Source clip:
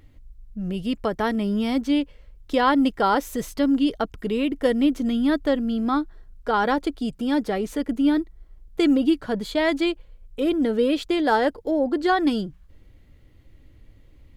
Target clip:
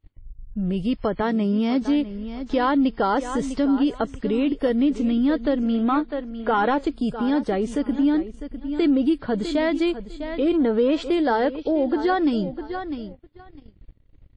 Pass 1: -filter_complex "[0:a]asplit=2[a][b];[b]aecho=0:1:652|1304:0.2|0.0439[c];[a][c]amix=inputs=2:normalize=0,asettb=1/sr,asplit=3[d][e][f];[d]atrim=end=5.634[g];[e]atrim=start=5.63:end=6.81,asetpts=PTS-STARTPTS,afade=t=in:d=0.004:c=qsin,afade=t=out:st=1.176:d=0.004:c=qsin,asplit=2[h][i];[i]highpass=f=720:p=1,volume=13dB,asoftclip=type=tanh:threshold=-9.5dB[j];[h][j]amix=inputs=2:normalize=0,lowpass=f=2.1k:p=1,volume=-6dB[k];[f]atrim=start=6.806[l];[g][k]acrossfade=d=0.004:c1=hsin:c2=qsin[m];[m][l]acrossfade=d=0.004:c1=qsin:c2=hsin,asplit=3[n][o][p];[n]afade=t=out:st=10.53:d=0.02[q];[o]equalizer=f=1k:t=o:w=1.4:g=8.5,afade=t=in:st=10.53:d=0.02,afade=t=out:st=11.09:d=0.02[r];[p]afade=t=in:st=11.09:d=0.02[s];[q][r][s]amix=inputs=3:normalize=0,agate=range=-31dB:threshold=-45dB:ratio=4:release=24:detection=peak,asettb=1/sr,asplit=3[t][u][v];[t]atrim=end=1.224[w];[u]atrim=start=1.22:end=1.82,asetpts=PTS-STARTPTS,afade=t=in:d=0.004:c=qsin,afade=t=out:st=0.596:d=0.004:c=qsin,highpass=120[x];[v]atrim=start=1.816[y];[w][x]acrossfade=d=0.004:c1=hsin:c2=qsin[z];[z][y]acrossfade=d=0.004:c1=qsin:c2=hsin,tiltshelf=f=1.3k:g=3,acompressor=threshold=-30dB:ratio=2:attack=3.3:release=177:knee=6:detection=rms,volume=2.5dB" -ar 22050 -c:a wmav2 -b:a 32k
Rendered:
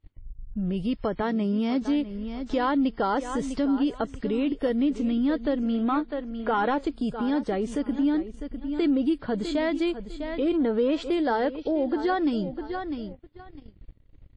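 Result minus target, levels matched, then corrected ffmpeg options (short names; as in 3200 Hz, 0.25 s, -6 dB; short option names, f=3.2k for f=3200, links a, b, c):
compressor: peak gain reduction +4 dB
-filter_complex "[0:a]asplit=2[a][b];[b]aecho=0:1:652|1304:0.2|0.0439[c];[a][c]amix=inputs=2:normalize=0,asettb=1/sr,asplit=3[d][e][f];[d]atrim=end=5.634[g];[e]atrim=start=5.63:end=6.81,asetpts=PTS-STARTPTS,afade=t=in:d=0.004:c=qsin,afade=t=out:st=1.176:d=0.004:c=qsin,asplit=2[h][i];[i]highpass=f=720:p=1,volume=13dB,asoftclip=type=tanh:threshold=-9.5dB[j];[h][j]amix=inputs=2:normalize=0,lowpass=f=2.1k:p=1,volume=-6dB[k];[f]atrim=start=6.806[l];[g][k]acrossfade=d=0.004:c1=hsin:c2=qsin[m];[m][l]acrossfade=d=0.004:c1=qsin:c2=hsin,asplit=3[n][o][p];[n]afade=t=out:st=10.53:d=0.02[q];[o]equalizer=f=1k:t=o:w=1.4:g=8.5,afade=t=in:st=10.53:d=0.02,afade=t=out:st=11.09:d=0.02[r];[p]afade=t=in:st=11.09:d=0.02[s];[q][r][s]amix=inputs=3:normalize=0,agate=range=-31dB:threshold=-45dB:ratio=4:release=24:detection=peak,asettb=1/sr,asplit=3[t][u][v];[t]atrim=end=1.224[w];[u]atrim=start=1.22:end=1.82,asetpts=PTS-STARTPTS,afade=t=in:d=0.004:c=qsin,afade=t=out:st=0.596:d=0.004:c=qsin,highpass=120[x];[v]atrim=start=1.816[y];[w][x]acrossfade=d=0.004:c1=hsin:c2=qsin[z];[z][y]acrossfade=d=0.004:c1=qsin:c2=hsin,tiltshelf=f=1.3k:g=3,acompressor=threshold=-22dB:ratio=2:attack=3.3:release=177:knee=6:detection=rms,volume=2.5dB" -ar 22050 -c:a wmav2 -b:a 32k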